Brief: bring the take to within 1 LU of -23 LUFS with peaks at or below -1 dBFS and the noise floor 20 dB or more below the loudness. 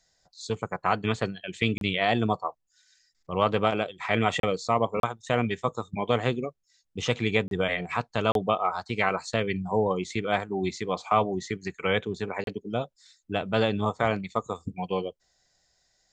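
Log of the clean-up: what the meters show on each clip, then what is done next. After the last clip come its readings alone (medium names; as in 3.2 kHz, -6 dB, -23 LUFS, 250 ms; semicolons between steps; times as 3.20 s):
dropouts 6; longest dropout 32 ms; loudness -28.0 LUFS; peak level -7.5 dBFS; loudness target -23.0 LUFS
-> interpolate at 1.78/4.40/5.00/7.48/8.32/12.44 s, 32 ms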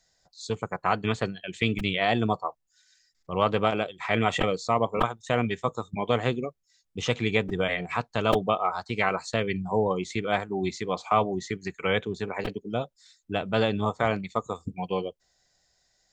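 dropouts 0; loudness -28.0 LUFS; peak level -7.5 dBFS; loudness target -23.0 LUFS
-> trim +5 dB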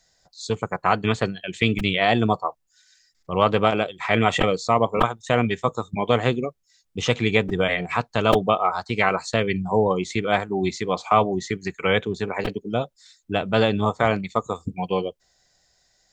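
loudness -23.0 LUFS; peak level -2.5 dBFS; noise floor -67 dBFS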